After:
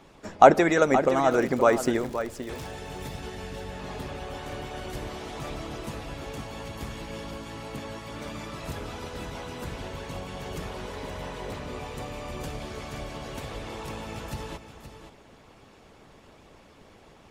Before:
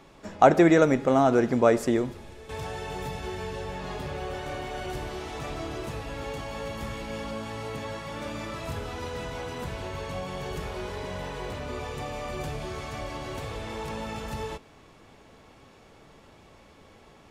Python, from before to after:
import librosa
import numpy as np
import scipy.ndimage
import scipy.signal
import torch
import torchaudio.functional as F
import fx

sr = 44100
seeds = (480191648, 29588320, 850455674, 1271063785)

y = fx.dmg_crackle(x, sr, seeds[0], per_s=120.0, level_db=-33.0, at=(1.3, 2.67), fade=0.02)
y = fx.hpss(y, sr, part='harmonic', gain_db=-11)
y = y + 10.0 ** (-10.5 / 20.0) * np.pad(y, (int(522 * sr / 1000.0), 0))[:len(y)]
y = F.gain(torch.from_numpy(y), 4.0).numpy()